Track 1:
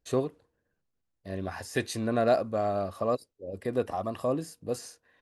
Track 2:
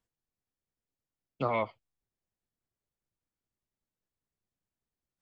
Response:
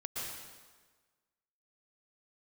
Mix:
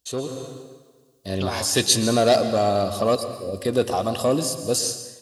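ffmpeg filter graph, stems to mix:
-filter_complex "[0:a]lowpass=f=3.1k:p=1,asoftclip=type=tanh:threshold=-18.5dB,volume=-3dB,asplit=2[a][b];[b]volume=-8.5dB[c];[1:a]alimiter=level_in=3dB:limit=-24dB:level=0:latency=1,volume=-3dB,volume=-6dB[d];[2:a]atrim=start_sample=2205[e];[c][e]afir=irnorm=-1:irlink=0[f];[a][d][f]amix=inputs=3:normalize=0,highpass=45,dynaudnorm=f=130:g=5:m=10dB,aexciter=amount=7.3:drive=4.6:freq=3k"

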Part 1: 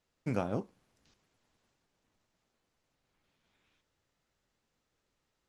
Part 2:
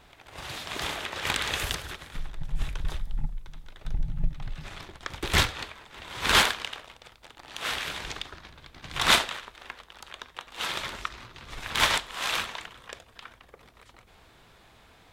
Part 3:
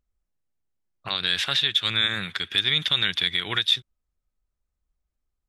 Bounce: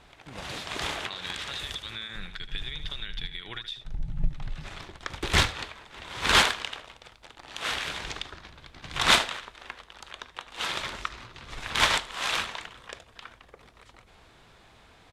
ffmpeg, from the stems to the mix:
-filter_complex "[0:a]volume=-14dB[a];[1:a]volume=0.5dB,asplit=2[b][c];[c]volume=-21dB[d];[2:a]acompressor=threshold=-25dB:ratio=6,volume=-9dB,asplit=3[e][f][g];[f]volume=-11dB[h];[g]apad=whole_len=666889[i];[b][i]sidechaincompress=threshold=-41dB:ratio=8:attack=6.2:release=595[j];[d][h]amix=inputs=2:normalize=0,aecho=0:1:77:1[k];[a][j][e][k]amix=inputs=4:normalize=0,lowpass=10k"

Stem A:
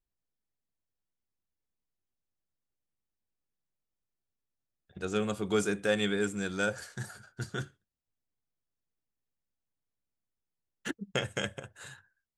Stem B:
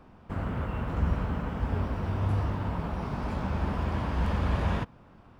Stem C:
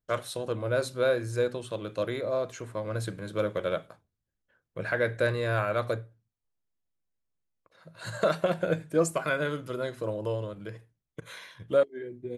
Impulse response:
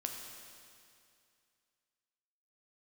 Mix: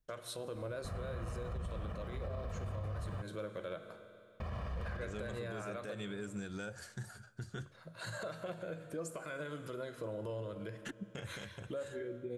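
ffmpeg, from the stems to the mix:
-filter_complex "[0:a]lowshelf=f=120:g=11.5,acompressor=threshold=-31dB:ratio=6,volume=-5dB,asplit=3[a][b][c];[b]volume=-22dB[d];[1:a]aecho=1:1:1.7:0.72,adelay=550,volume=-3dB,asplit=3[e][f][g];[e]atrim=end=3.22,asetpts=PTS-STARTPTS,afade=t=out:st=3.216:d=0.004:c=hsin[h];[f]atrim=start=3.22:end=4.4,asetpts=PTS-STARTPTS,volume=0[i];[g]atrim=start=4.4,asetpts=PTS-STARTPTS,afade=t=in:d=0.004:c=hsin[j];[h][i][j]concat=n=3:v=0:a=1[k];[2:a]alimiter=level_in=1dB:limit=-24dB:level=0:latency=1:release=298,volume=-1dB,volume=-4.5dB,asplit=2[l][m];[m]volume=-5dB[n];[c]apad=whole_len=262285[o];[k][o]sidechaincompress=threshold=-50dB:ratio=8:attack=11:release=390[p];[3:a]atrim=start_sample=2205[q];[d][n]amix=inputs=2:normalize=0[r];[r][q]afir=irnorm=-1:irlink=0[s];[a][p][l][s]amix=inputs=4:normalize=0,alimiter=level_in=9dB:limit=-24dB:level=0:latency=1:release=147,volume=-9dB"

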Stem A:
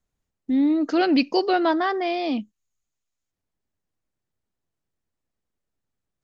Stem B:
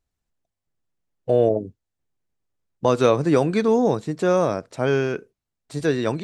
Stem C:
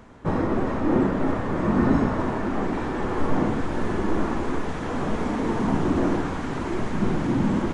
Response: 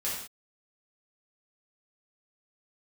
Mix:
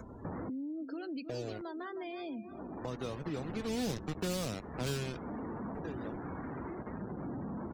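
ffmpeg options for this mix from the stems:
-filter_complex "[0:a]acompressor=mode=upward:threshold=-30dB:ratio=2.5,equalizer=f=750:t=o:w=0.26:g=-6,volume=-6dB,asplit=3[a][b][c];[b]volume=-23dB[d];[1:a]acrusher=bits=3:mix=0:aa=0.000001,volume=-9dB,afade=t=in:st=3.59:d=0.25:silence=0.421697,afade=t=out:st=4.83:d=0.61:silence=0.251189[e];[2:a]volume=25.5dB,asoftclip=hard,volume=-25.5dB,volume=-9.5dB[f];[c]apad=whole_len=341218[g];[f][g]sidechaincompress=threshold=-41dB:ratio=12:attack=9.5:release=974[h];[a][h]amix=inputs=2:normalize=0,highpass=54,acompressor=threshold=-37dB:ratio=16,volume=0dB[i];[d]aecho=0:1:313|626|939|1252|1565|1878:1|0.42|0.176|0.0741|0.0311|0.0131[j];[e][i][j]amix=inputs=3:normalize=0,acompressor=mode=upward:threshold=-36dB:ratio=2.5,afftdn=nr=35:nf=-46,acrossover=split=230|3000[k][l][m];[l]acompressor=threshold=-39dB:ratio=6[n];[k][n][m]amix=inputs=3:normalize=0"

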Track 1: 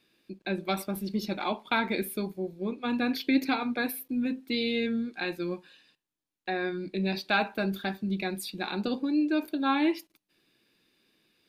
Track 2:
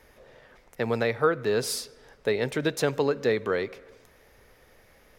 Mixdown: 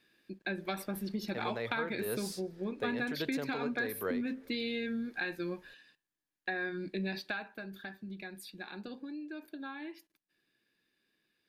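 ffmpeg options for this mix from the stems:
-filter_complex "[0:a]equalizer=f=1.7k:w=5.6:g=10.5,acompressor=threshold=-29dB:ratio=6,volume=-3dB,afade=t=out:st=7.1:d=0.49:silence=0.398107,asplit=2[a][b];[1:a]adelay=550,volume=-2dB[c];[b]apad=whole_len=252972[d];[c][d]sidechaincompress=threshold=-44dB:ratio=12:attack=23:release=464[e];[a][e]amix=inputs=2:normalize=0"

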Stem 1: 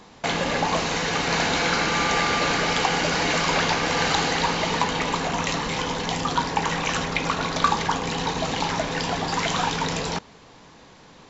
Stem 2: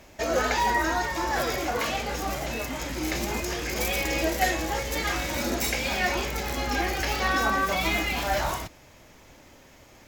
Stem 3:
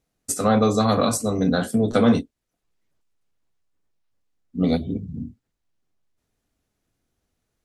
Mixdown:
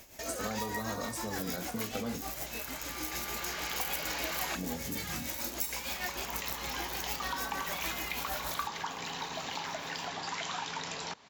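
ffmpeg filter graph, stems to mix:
-filter_complex "[0:a]highpass=110,equalizer=f=190:t=o:w=2.9:g=-9,bandreject=f=490:w=12,adelay=950,volume=-3.5dB[a];[1:a]aemphasis=mode=production:type=75kf,tremolo=f=6.6:d=0.6,volume=-5dB[b];[2:a]acompressor=threshold=-29dB:ratio=2,volume=-3dB,asplit=2[c][d];[d]apad=whole_len=540035[e];[a][e]sidechaincompress=threshold=-46dB:ratio=8:attack=16:release=1190[f];[f][b][c]amix=inputs=3:normalize=0,acompressor=threshold=-40dB:ratio=2"

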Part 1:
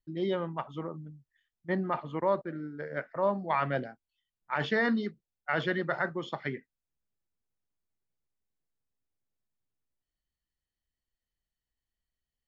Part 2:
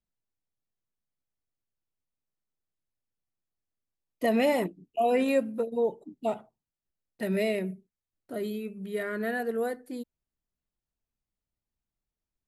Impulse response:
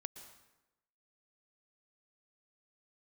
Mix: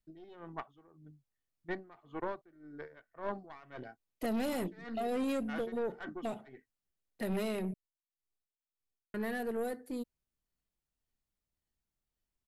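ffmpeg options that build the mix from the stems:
-filter_complex "[0:a]aecho=1:1:2.7:0.41,aeval=exprs='(tanh(14.1*val(0)+0.7)-tanh(0.7))/14.1':c=same,aeval=exprs='val(0)*pow(10,-21*(0.5-0.5*cos(2*PI*1.8*n/s))/20)':c=same,volume=-2dB[a];[1:a]acrossover=split=390|3000[b][c][d];[c]acompressor=threshold=-35dB:ratio=6[e];[b][e][d]amix=inputs=3:normalize=0,asoftclip=type=tanh:threshold=-29dB,aeval=exprs='0.0355*(cos(1*acos(clip(val(0)/0.0355,-1,1)))-cos(1*PI/2))+0.00501*(cos(2*acos(clip(val(0)/0.0355,-1,1)))-cos(2*PI/2))':c=same,volume=-1dB,asplit=3[f][g][h];[f]atrim=end=7.74,asetpts=PTS-STARTPTS,afade=t=out:st=7.736:d=0.004:c=hsin[i];[g]atrim=start=7.74:end=9.14,asetpts=PTS-STARTPTS,volume=0[j];[h]atrim=start=9.14,asetpts=PTS-STARTPTS,afade=t=in:d=0.004:c=hsin[k];[i][j][k]concat=n=3:v=0:a=1,asplit=2[l][m];[m]apad=whole_len=550279[n];[a][n]sidechaincompress=threshold=-41dB:ratio=8:attack=16:release=510[o];[o][l]amix=inputs=2:normalize=0"

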